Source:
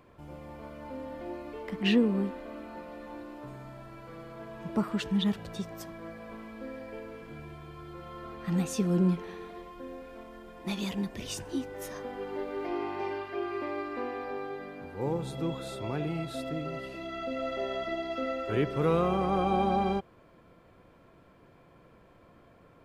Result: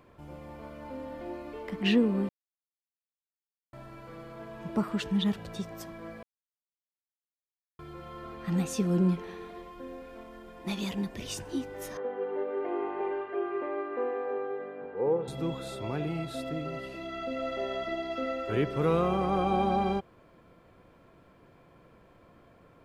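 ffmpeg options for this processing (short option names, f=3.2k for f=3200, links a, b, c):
-filter_complex "[0:a]asettb=1/sr,asplit=3[a][b][c];[a]atrim=end=11.974[d];[b]atrim=start=11.97:end=15.28,asetpts=PTS-STARTPTS,afade=t=in:d=0.004:c=qsin,afade=t=out:st=3.306:d=0.004:c=qsin,highpass=220,equalizer=f=280:t=q:w=4:g=-4,equalizer=f=460:t=q:w=4:g=10,equalizer=f=2.3k:t=q:w=4:g=-6,lowpass=f=2.6k:w=0.5412,lowpass=f=2.6k:w=1.3066[e];[c]atrim=start=15.276[f];[d][e]acrossfade=d=0.004:c1=hsin:c2=qsin[g];[g][f]acrossfade=d=0.004:c1=qsin:c2=hsin,asplit=5[h][i][j][k][l];[h]atrim=end=2.29,asetpts=PTS-STARTPTS,afade=t=out:st=2.286:d=0.004:c=hsin[m];[i]atrim=start=2.29:end=3.73,asetpts=PTS-STARTPTS,volume=0[n];[j]atrim=start=3.73:end=6.23,asetpts=PTS-STARTPTS,afade=t=in:d=0.004:c=hsin,afade=t=out:st=2.496:d=0.004:c=hsin[o];[k]atrim=start=6.23:end=7.79,asetpts=PTS-STARTPTS,volume=0[p];[l]atrim=start=7.79,asetpts=PTS-STARTPTS,afade=t=in:d=0.004:c=hsin[q];[m][n][o][p][q]concat=n=5:v=0:a=1"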